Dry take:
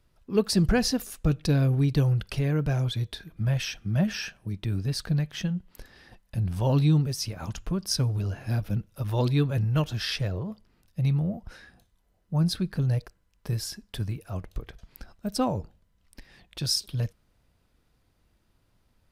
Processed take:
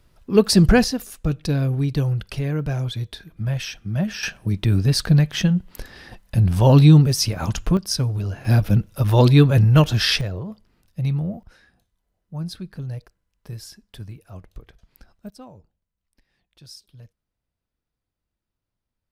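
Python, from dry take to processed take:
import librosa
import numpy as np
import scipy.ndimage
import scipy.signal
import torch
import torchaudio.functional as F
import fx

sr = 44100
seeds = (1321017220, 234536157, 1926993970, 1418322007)

y = fx.gain(x, sr, db=fx.steps((0.0, 8.5), (0.84, 1.5), (4.23, 10.5), (7.77, 3.5), (8.45, 11.0), (10.21, 2.0), (11.43, -5.5), (15.3, -16.5)))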